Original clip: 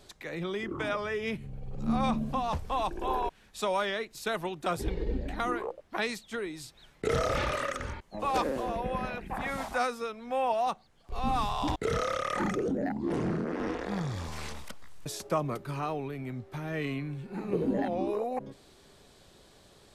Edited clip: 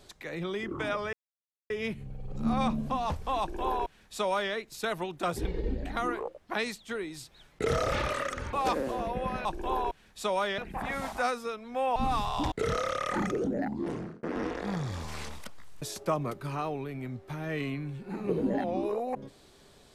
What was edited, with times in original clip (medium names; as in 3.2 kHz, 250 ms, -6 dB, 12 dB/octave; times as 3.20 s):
1.13 s: insert silence 0.57 s
2.83–3.96 s: copy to 9.14 s
7.96–8.22 s: delete
10.52–11.20 s: delete
12.97–13.47 s: fade out